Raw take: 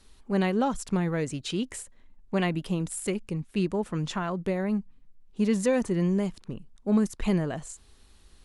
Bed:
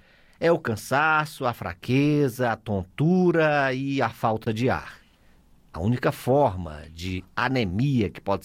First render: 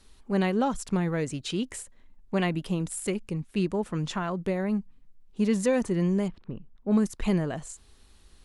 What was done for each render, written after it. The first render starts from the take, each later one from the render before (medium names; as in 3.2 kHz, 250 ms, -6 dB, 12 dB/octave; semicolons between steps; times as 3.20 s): 6.28–6.91 s: distance through air 340 m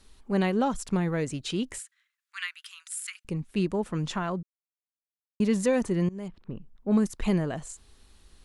1.78–3.25 s: steep high-pass 1.3 kHz 48 dB/octave; 4.43–5.40 s: mute; 6.09–6.54 s: fade in, from -22.5 dB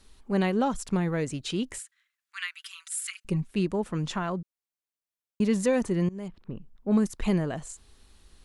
2.54–3.48 s: comb 5.2 ms, depth 90%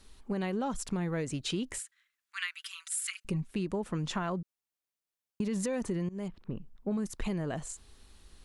peak limiter -20.5 dBFS, peak gain reduction 7 dB; compression, threshold -29 dBFS, peak gain reduction 5.5 dB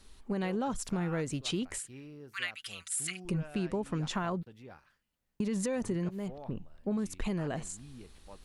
add bed -27.5 dB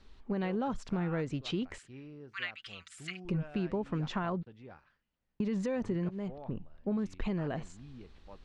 distance through air 170 m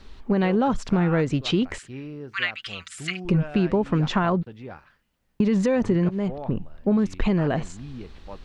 trim +12 dB